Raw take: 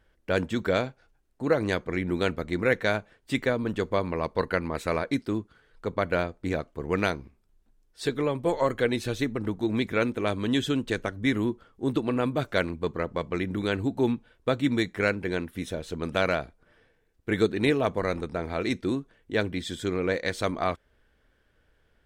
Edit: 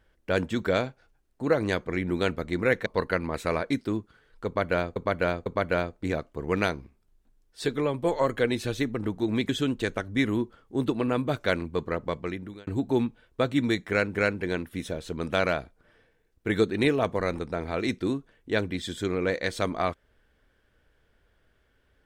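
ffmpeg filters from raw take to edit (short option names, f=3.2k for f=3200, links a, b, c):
-filter_complex "[0:a]asplit=7[a][b][c][d][e][f][g];[a]atrim=end=2.862[h];[b]atrim=start=4.268:end=6.372[i];[c]atrim=start=5.868:end=6.372[j];[d]atrim=start=5.868:end=9.902[k];[e]atrim=start=10.568:end=13.75,asetpts=PTS-STARTPTS,afade=t=out:st=2.612:d=0.57[l];[f]atrim=start=13.75:end=15.232,asetpts=PTS-STARTPTS,afade=t=in:d=0.004:c=hsin[m];[g]atrim=start=14.968[n];[h][i]acrossfade=d=0.004:c1=hsin:c2=hsin[o];[o][j]acrossfade=d=0.004:c1=hsin:c2=hsin[p];[p][k]acrossfade=d=0.004:c1=hsin:c2=hsin[q];[l][m]concat=n=2:v=0:a=1[r];[q][r]acrossfade=d=0.004:c1=hsin:c2=hsin[s];[s][n]acrossfade=d=0.004:c1=hsin:c2=hsin"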